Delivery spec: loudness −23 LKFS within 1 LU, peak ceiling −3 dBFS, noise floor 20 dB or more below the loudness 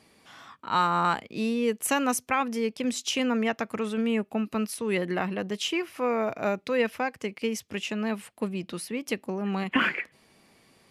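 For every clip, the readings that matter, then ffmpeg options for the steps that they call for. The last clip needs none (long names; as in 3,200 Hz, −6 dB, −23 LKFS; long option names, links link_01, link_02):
integrated loudness −28.5 LKFS; sample peak −10.5 dBFS; target loudness −23.0 LKFS
→ -af "volume=5.5dB"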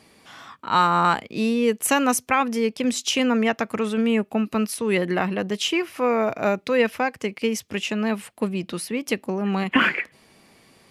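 integrated loudness −23.0 LKFS; sample peak −5.0 dBFS; background noise floor −58 dBFS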